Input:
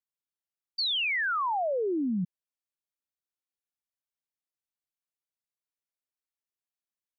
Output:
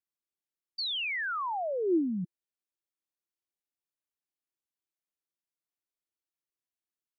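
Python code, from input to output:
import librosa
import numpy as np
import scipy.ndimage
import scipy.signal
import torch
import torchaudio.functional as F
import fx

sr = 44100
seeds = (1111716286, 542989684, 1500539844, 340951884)

y = fx.peak_eq(x, sr, hz=340.0, db=9.5, octaves=0.44)
y = y * librosa.db_to_amplitude(-4.5)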